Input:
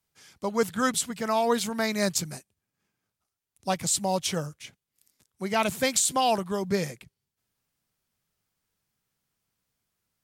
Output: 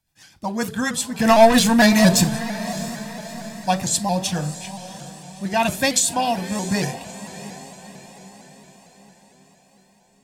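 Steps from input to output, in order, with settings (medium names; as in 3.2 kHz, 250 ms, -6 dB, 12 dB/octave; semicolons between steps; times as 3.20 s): 1.19–2.29 s: waveshaping leveller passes 3; rotary cabinet horn 7.5 Hz, later 1 Hz, at 4.41 s; echo that smears into a reverb 647 ms, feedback 51%, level -13.5 dB; reverberation RT60 0.45 s, pre-delay 3 ms, DRR 11.5 dB; vibrato with a chosen wave saw up 4.4 Hz, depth 100 cents; trim +5 dB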